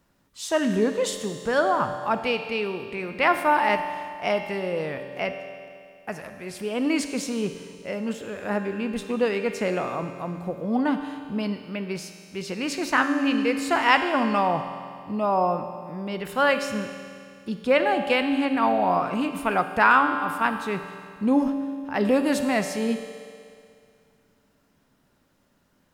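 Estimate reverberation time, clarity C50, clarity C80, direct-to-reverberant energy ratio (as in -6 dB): 2.3 s, 7.5 dB, 8.5 dB, 7.0 dB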